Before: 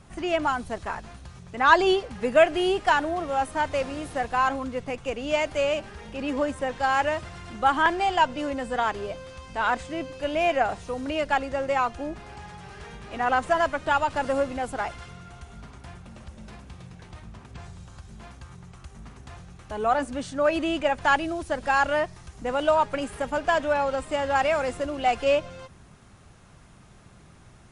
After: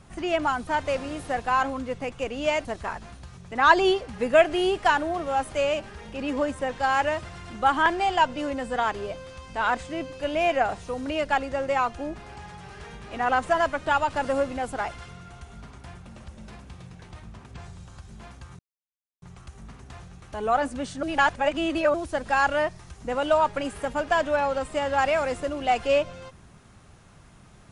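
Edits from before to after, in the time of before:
3.53–5.51 s: move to 0.67 s
18.59 s: insert silence 0.63 s
20.40–21.31 s: reverse

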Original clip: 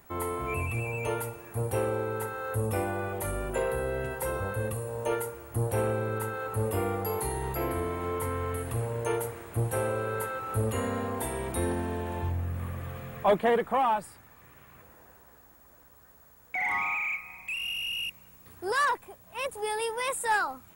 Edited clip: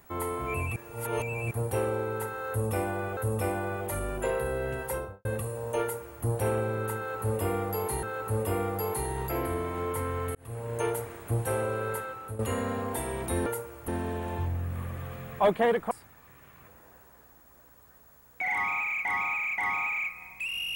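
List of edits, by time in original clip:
0.76–1.51 s: reverse
2.49–3.17 s: loop, 2 plays
4.20–4.57 s: studio fade out
5.14–5.56 s: copy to 11.72 s
6.29–7.35 s: loop, 2 plays
8.61–9.04 s: fade in
10.16–10.65 s: fade out, to -13 dB
13.75–14.05 s: delete
16.66–17.19 s: loop, 3 plays

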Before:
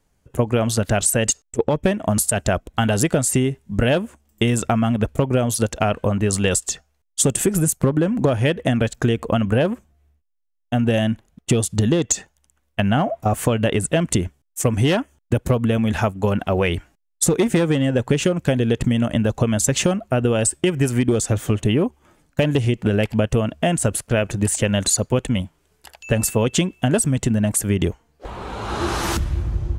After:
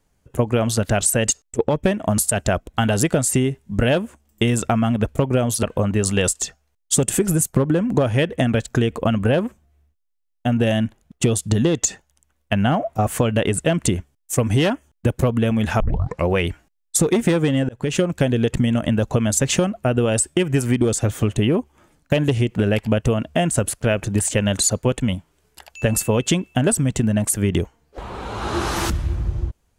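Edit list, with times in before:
5.63–5.90 s: delete
16.07 s: tape start 0.49 s
17.96–18.25 s: fade in

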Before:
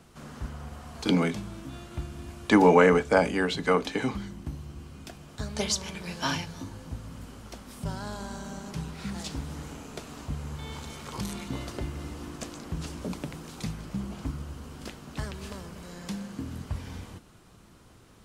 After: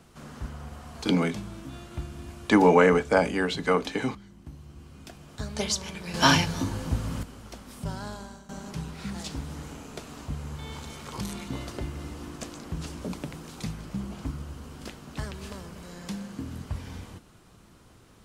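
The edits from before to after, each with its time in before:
4.15–5.36 s: fade in, from -14 dB
6.14–7.23 s: gain +10 dB
8.05–8.49 s: fade out, to -16 dB

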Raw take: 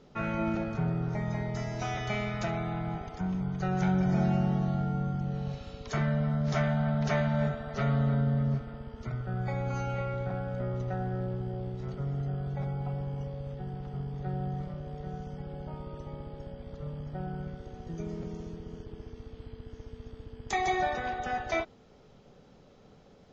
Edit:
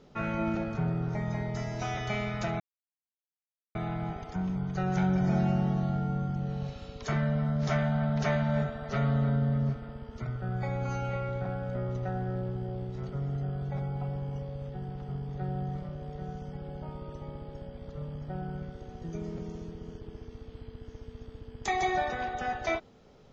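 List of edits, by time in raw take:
2.60 s: insert silence 1.15 s

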